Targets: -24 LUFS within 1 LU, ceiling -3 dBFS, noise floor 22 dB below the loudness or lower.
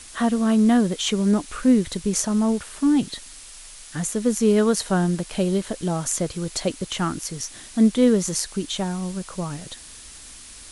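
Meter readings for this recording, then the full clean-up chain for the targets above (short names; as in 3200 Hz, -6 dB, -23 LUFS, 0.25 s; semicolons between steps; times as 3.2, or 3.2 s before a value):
noise floor -43 dBFS; noise floor target -45 dBFS; loudness -22.5 LUFS; peak -3.5 dBFS; loudness target -24.0 LUFS
-> denoiser 6 dB, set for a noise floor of -43 dBFS; gain -1.5 dB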